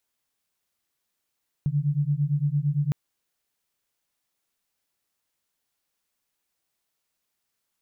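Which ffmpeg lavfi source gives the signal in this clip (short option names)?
-f lavfi -i "aevalsrc='0.0596*(sin(2*PI*141*t)+sin(2*PI*149.8*t))':d=1.26:s=44100"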